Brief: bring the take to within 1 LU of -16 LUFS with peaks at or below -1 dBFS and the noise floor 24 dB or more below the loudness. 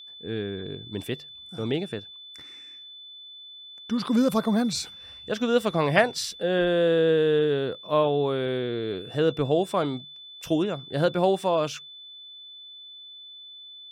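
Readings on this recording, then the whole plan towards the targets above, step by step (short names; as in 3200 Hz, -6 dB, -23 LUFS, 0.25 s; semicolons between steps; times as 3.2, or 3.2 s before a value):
steady tone 3500 Hz; tone level -42 dBFS; loudness -25.5 LUFS; peak -6.0 dBFS; loudness target -16.0 LUFS
-> notch 3500 Hz, Q 30; gain +9.5 dB; limiter -1 dBFS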